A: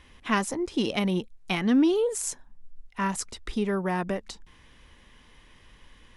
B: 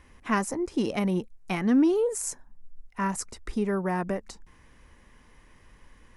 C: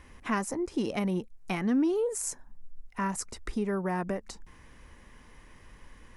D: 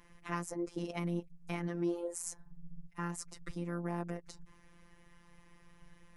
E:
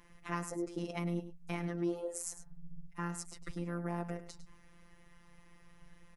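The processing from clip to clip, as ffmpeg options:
-af "equalizer=f=3400:t=o:w=0.79:g=-11"
-af "acompressor=threshold=0.0112:ratio=1.5,volume=1.33"
-af "tremolo=f=130:d=0.788,afftfilt=real='hypot(re,im)*cos(PI*b)':imag='0':win_size=1024:overlap=0.75,volume=0.891"
-af "aecho=1:1:103:0.224"

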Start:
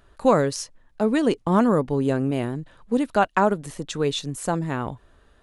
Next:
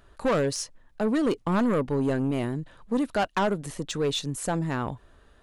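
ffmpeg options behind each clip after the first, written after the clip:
-af "asoftclip=type=tanh:threshold=0.112"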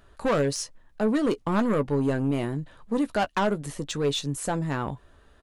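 -filter_complex "[0:a]asplit=2[s0][s1];[s1]adelay=14,volume=0.282[s2];[s0][s2]amix=inputs=2:normalize=0"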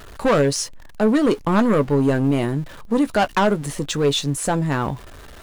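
-af "aeval=exprs='val(0)+0.5*0.00631*sgn(val(0))':c=same,volume=2.11"

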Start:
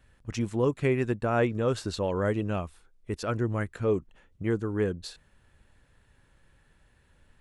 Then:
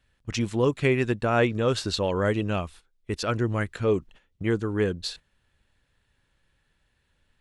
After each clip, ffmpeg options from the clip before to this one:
-af "agate=range=0.282:threshold=0.00355:ratio=16:detection=peak,equalizer=f=3700:t=o:w=1.7:g=7.5,volume=1.33"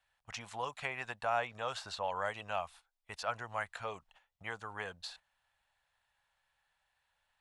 -filter_complex "[0:a]acrossover=split=380|2100[s0][s1][s2];[s0]acompressor=threshold=0.0447:ratio=4[s3];[s1]acompressor=threshold=0.0501:ratio=4[s4];[s2]acompressor=threshold=0.0141:ratio=4[s5];[s3][s4][s5]amix=inputs=3:normalize=0,lowshelf=f=510:t=q:w=3:g=-14,volume=0.447"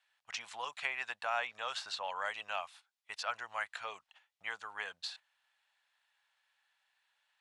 -af "bandpass=f=3300:t=q:w=0.53:csg=0,volume=1.58"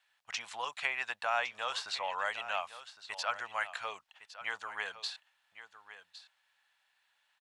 -af "aecho=1:1:1110:0.2,volume=1.41"

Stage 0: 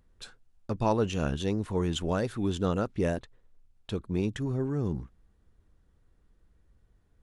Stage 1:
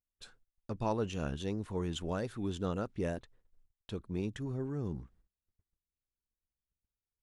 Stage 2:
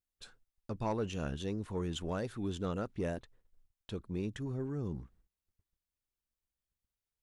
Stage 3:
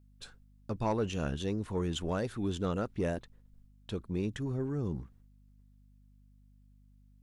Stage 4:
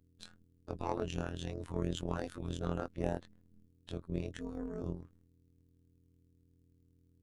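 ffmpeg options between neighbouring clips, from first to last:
-af "agate=range=0.0501:threshold=0.00158:ratio=16:detection=peak,volume=0.447"
-af "asoftclip=type=tanh:threshold=0.0596"
-af "aeval=exprs='val(0)+0.000708*(sin(2*PI*50*n/s)+sin(2*PI*2*50*n/s)/2+sin(2*PI*3*50*n/s)/3+sin(2*PI*4*50*n/s)/4+sin(2*PI*5*50*n/s)/5)':c=same,volume=1.5"
-af "afftfilt=real='hypot(re,im)*cos(PI*b)':imag='0':win_size=2048:overlap=0.75,tremolo=f=210:d=0.857,volume=1.33"

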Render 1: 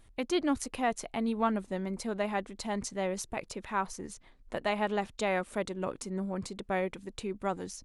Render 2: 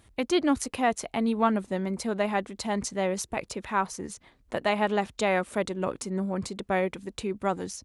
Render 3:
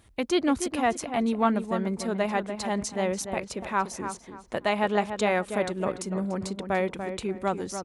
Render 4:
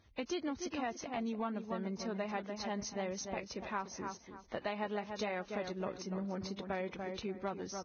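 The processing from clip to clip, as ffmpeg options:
-af "highpass=f=43:w=0.5412,highpass=f=43:w=1.3066,volume=1.78"
-filter_complex "[0:a]asplit=2[s0][s1];[s1]adelay=291,lowpass=f=2200:p=1,volume=0.398,asplit=2[s2][s3];[s3]adelay=291,lowpass=f=2200:p=1,volume=0.28,asplit=2[s4][s5];[s5]adelay=291,lowpass=f=2200:p=1,volume=0.28[s6];[s0][s2][s4][s6]amix=inputs=4:normalize=0"
-af "acompressor=threshold=0.0562:ratio=12,volume=0.376" -ar 16000 -c:a libvorbis -b:a 16k

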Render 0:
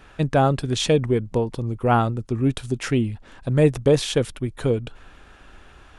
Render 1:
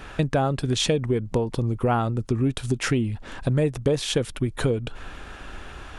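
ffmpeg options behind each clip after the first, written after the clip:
-af "acompressor=threshold=0.0316:ratio=4,volume=2.66"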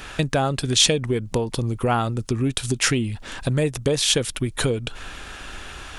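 -af "highshelf=f=2200:g=11.5"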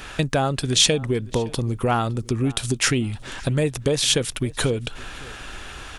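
-filter_complex "[0:a]asplit=2[s0][s1];[s1]adelay=563,lowpass=f=4800:p=1,volume=0.0841,asplit=2[s2][s3];[s3]adelay=563,lowpass=f=4800:p=1,volume=0.28[s4];[s0][s2][s4]amix=inputs=3:normalize=0"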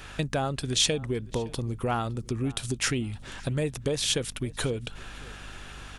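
-af "aeval=exprs='val(0)+0.01*(sin(2*PI*50*n/s)+sin(2*PI*2*50*n/s)/2+sin(2*PI*3*50*n/s)/3+sin(2*PI*4*50*n/s)/4+sin(2*PI*5*50*n/s)/5)':c=same,volume=0.447"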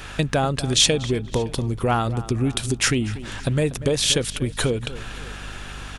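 -filter_complex "[0:a]asplit=2[s0][s1];[s1]adelay=240,lowpass=f=3000:p=1,volume=0.178,asplit=2[s2][s3];[s3]adelay=240,lowpass=f=3000:p=1,volume=0.25,asplit=2[s4][s5];[s5]adelay=240,lowpass=f=3000:p=1,volume=0.25[s6];[s0][s2][s4][s6]amix=inputs=4:normalize=0,volume=2.24"

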